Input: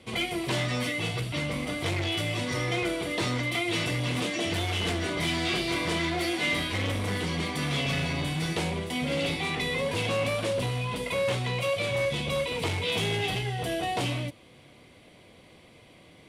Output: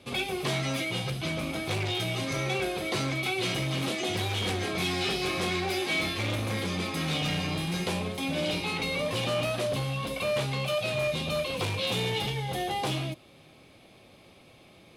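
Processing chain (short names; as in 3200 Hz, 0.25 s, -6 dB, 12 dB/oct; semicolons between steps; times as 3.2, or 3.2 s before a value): speed mistake 44.1 kHz file played as 48 kHz; gain -1 dB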